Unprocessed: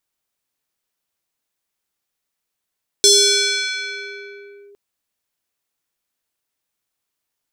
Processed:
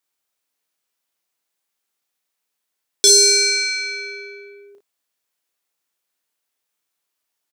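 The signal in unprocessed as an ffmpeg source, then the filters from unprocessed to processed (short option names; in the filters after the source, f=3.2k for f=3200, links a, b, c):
-f lavfi -i "aevalsrc='0.447*pow(10,-3*t/2.82)*sin(2*PI*404*t+4*clip(1-t/1.68,0,1)*sin(2*PI*4.72*404*t))':d=1.71:s=44100"
-filter_complex "[0:a]highpass=f=300:p=1,asplit=2[a][b];[b]aecho=0:1:33|55:0.531|0.376[c];[a][c]amix=inputs=2:normalize=0"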